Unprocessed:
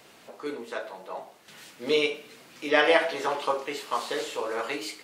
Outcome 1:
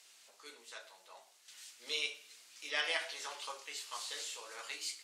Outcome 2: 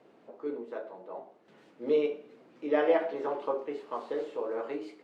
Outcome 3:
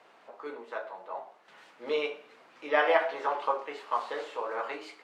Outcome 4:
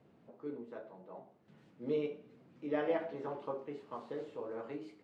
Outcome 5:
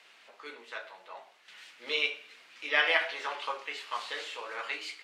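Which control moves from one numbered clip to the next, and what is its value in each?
resonant band-pass, frequency: 7,000, 350, 940, 140, 2,400 Hertz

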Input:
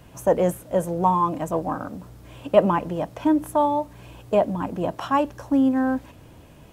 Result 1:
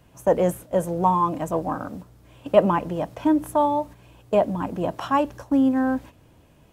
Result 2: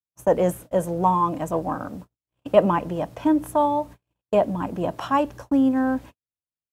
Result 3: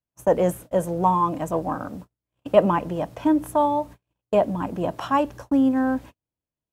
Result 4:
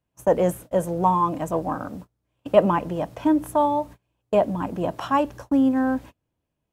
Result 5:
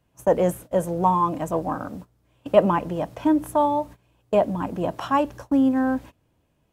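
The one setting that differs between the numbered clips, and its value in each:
noise gate, range: −7, −59, −45, −32, −20 decibels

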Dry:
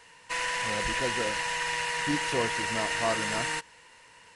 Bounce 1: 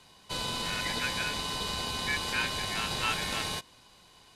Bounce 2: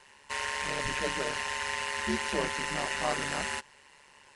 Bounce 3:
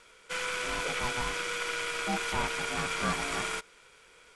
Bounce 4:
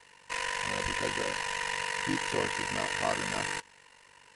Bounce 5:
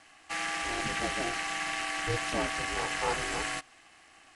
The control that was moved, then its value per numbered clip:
ring modulation, frequency: 2,000, 71, 490, 24, 180 Hertz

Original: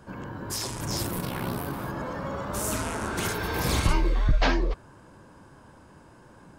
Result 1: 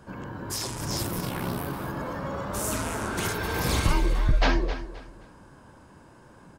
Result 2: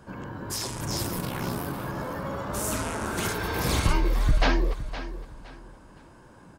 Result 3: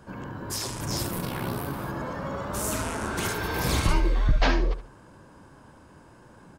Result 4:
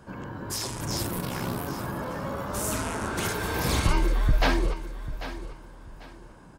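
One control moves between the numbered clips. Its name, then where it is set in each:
repeating echo, delay time: 262, 514, 72, 793 milliseconds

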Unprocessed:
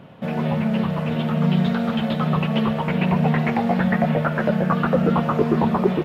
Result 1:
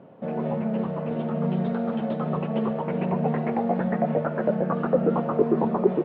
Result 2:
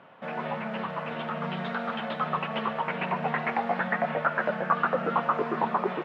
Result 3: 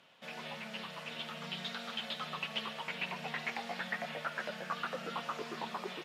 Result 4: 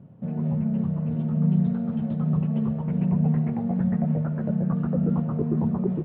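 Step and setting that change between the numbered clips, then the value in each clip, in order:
resonant band-pass, frequency: 440, 1,300, 5,800, 120 Hertz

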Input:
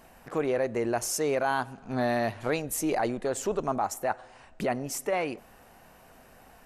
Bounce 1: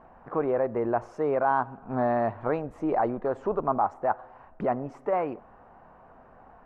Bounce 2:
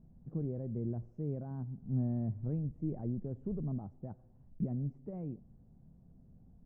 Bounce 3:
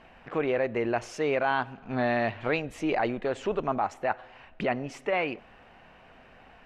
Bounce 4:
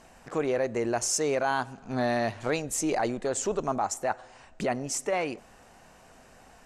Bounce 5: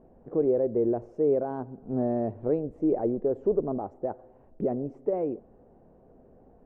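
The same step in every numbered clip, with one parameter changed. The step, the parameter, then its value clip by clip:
low-pass with resonance, frequency: 1,100, 160, 2,800, 7,400, 430 Hertz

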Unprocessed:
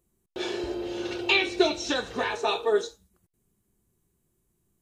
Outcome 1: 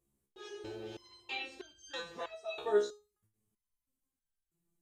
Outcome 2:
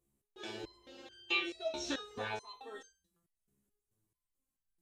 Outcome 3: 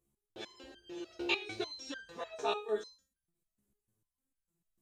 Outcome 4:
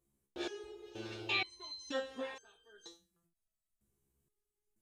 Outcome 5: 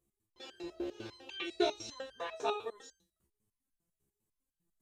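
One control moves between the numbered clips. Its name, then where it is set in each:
step-sequenced resonator, speed: 3.1, 4.6, 6.7, 2.1, 10 Hertz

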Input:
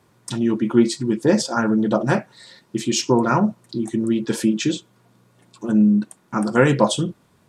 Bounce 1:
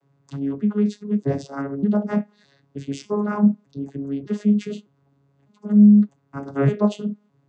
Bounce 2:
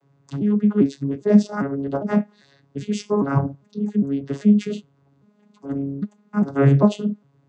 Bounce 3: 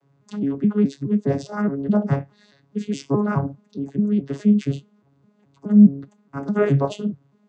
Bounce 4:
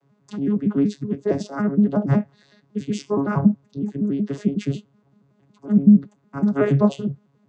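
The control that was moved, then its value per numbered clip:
vocoder with an arpeggio as carrier, a note every: 607, 401, 209, 93 milliseconds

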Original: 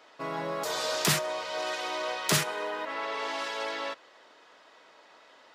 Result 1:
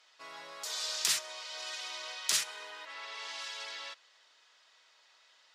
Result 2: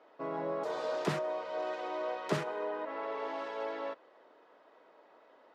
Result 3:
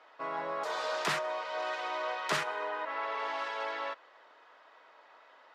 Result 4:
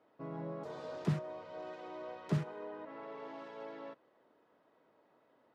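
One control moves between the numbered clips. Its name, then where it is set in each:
resonant band-pass, frequency: 6,000, 420, 1,100, 130 Hertz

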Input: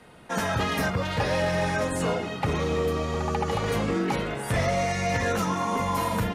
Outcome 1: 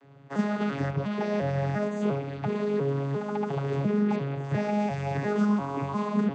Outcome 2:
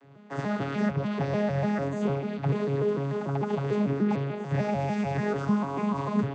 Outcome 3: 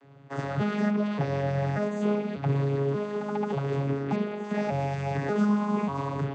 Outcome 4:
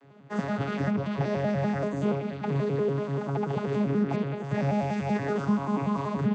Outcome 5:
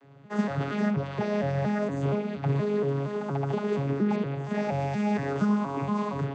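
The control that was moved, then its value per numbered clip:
vocoder with an arpeggio as carrier, a note every: 349, 148, 587, 96, 235 milliseconds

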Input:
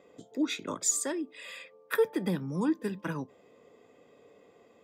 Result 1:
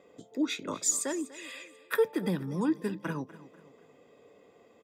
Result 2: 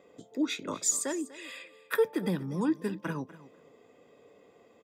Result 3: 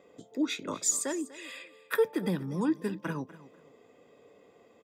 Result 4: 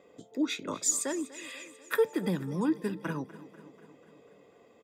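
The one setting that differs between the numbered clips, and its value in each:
repeating echo, feedback: 41, 17, 25, 62%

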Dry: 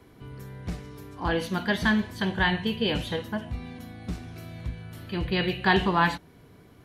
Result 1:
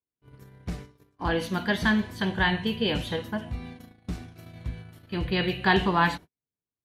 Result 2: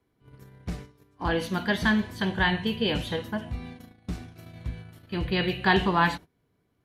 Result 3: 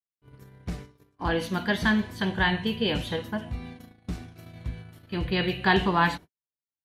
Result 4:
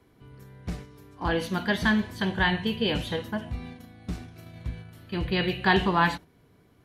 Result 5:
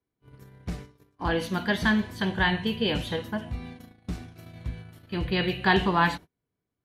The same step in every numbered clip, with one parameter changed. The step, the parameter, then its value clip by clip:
noise gate, range: −46, −19, −60, −7, −32 decibels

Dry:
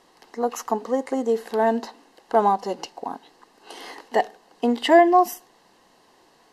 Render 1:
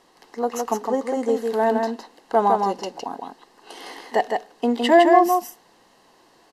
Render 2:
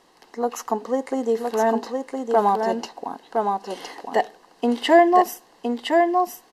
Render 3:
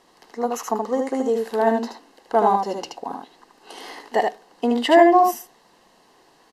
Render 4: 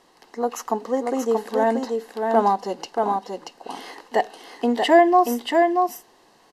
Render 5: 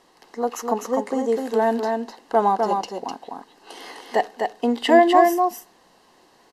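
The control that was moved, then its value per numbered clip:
single-tap delay, delay time: 160, 1,013, 76, 632, 253 milliseconds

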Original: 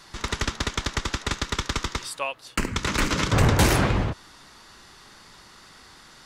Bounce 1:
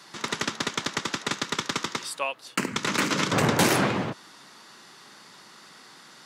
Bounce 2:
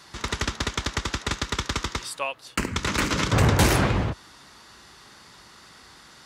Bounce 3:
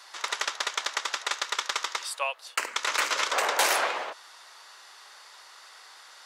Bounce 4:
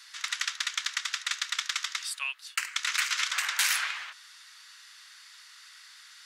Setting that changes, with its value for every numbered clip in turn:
high-pass filter, corner frequency: 150, 44, 560, 1,500 Hertz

